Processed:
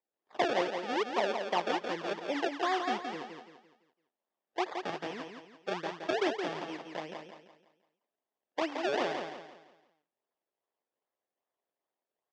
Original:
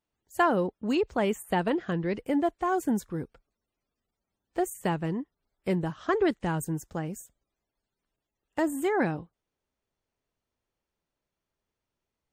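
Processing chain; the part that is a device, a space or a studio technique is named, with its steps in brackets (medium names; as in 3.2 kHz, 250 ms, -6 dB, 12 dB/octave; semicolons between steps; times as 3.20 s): circuit-bent sampling toy (decimation with a swept rate 30×, swing 100% 2.5 Hz; cabinet simulation 530–4600 Hz, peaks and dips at 1.4 kHz -7 dB, 2.4 kHz -5 dB, 4.1 kHz -8 dB); feedback delay 170 ms, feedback 38%, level -6 dB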